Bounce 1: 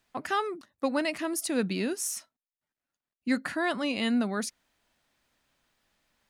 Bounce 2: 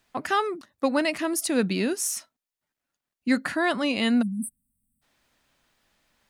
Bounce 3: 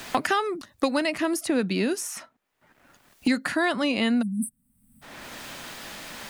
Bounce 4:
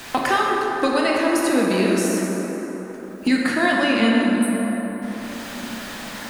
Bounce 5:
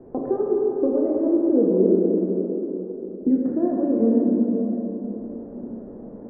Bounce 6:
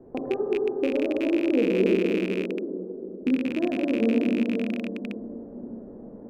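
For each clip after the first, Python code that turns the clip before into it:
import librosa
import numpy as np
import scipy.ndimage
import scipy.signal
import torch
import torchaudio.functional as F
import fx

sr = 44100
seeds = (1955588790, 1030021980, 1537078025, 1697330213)

y1 = fx.spec_erase(x, sr, start_s=4.22, length_s=0.8, low_hz=270.0, high_hz=7900.0)
y1 = y1 * librosa.db_to_amplitude(4.5)
y2 = fx.band_squash(y1, sr, depth_pct=100)
y3 = fx.rev_plate(y2, sr, seeds[0], rt60_s=4.7, hf_ratio=0.4, predelay_ms=0, drr_db=-3.5)
y3 = y3 * librosa.db_to_amplitude(1.5)
y4 = fx.ladder_lowpass(y3, sr, hz=500.0, resonance_pct=55)
y4 = y4 * librosa.db_to_amplitude(6.5)
y5 = fx.rattle_buzz(y4, sr, strikes_db=-28.0, level_db=-19.0)
y5 = y5 * librosa.db_to_amplitude(-4.0)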